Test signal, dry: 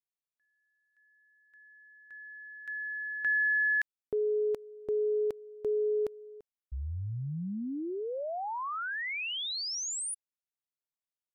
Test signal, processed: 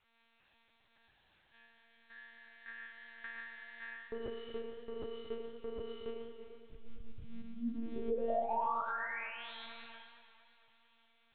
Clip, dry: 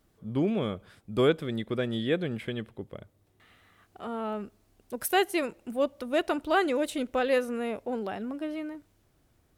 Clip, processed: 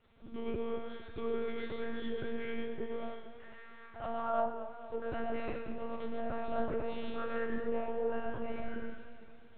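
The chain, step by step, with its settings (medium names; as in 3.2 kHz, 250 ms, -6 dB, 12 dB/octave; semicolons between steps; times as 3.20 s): dead-time distortion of 0.073 ms; peak limiter -22.5 dBFS; level-controlled noise filter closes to 2.1 kHz, open at -27 dBFS; on a send: flutter echo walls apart 3.5 m, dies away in 0.25 s; on the sum: compression 4:1, threshold -39 dBFS; word length cut 12-bit, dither triangular; bass shelf 190 Hz -10.5 dB; feedback comb 80 Hz, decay 0.59 s, harmonics all, mix 100%; low-pass that closes with the level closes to 1.1 kHz, closed at -48.5 dBFS; gated-style reverb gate 160 ms rising, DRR 1 dB; monotone LPC vocoder at 8 kHz 230 Hz; modulated delay 227 ms, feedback 60%, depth 60 cents, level -13 dB; trim +16.5 dB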